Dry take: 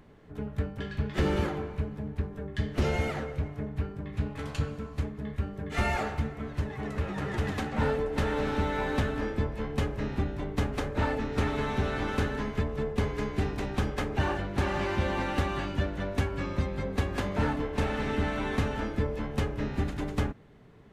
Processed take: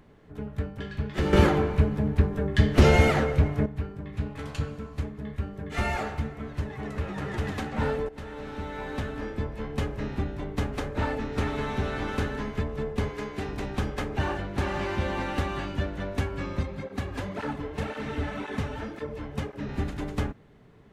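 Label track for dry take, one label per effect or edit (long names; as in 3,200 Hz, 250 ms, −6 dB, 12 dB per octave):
1.330000	3.660000	clip gain +10 dB
8.090000	9.820000	fade in, from −13.5 dB
13.090000	13.490000	low-shelf EQ 160 Hz −10.5 dB
16.630000	19.690000	through-zero flanger with one copy inverted nulls at 1.9 Hz, depth 5.9 ms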